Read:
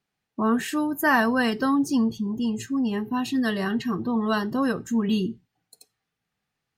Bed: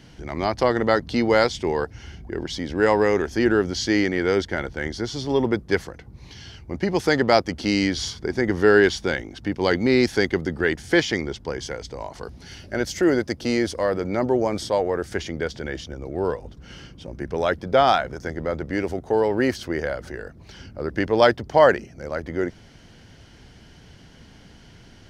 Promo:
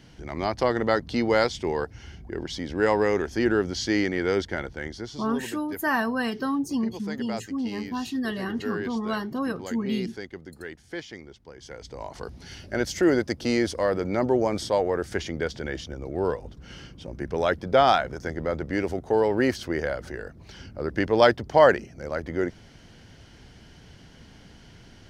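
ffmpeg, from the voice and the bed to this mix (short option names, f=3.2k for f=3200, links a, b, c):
-filter_complex "[0:a]adelay=4800,volume=-4.5dB[a];[1:a]volume=12dB,afade=t=out:st=4.51:d=0.98:silence=0.211349,afade=t=in:st=11.56:d=0.63:silence=0.16788[b];[a][b]amix=inputs=2:normalize=0"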